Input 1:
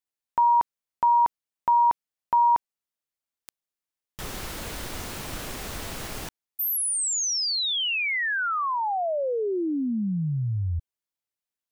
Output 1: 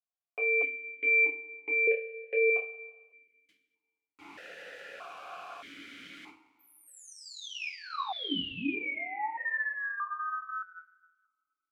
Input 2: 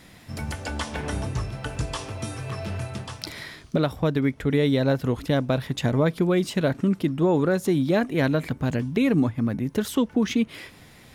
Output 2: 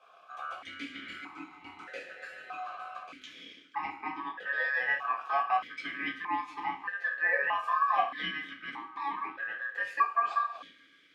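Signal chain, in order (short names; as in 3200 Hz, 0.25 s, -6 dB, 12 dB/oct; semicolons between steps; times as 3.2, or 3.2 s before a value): two-slope reverb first 0.31 s, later 1.7 s, from -18 dB, DRR -4.5 dB; ring modulator 1400 Hz; vowel sequencer 1.6 Hz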